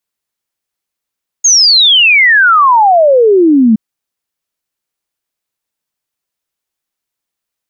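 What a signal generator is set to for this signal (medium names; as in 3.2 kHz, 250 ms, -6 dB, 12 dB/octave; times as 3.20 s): log sweep 6.7 kHz -> 210 Hz 2.32 s -3.5 dBFS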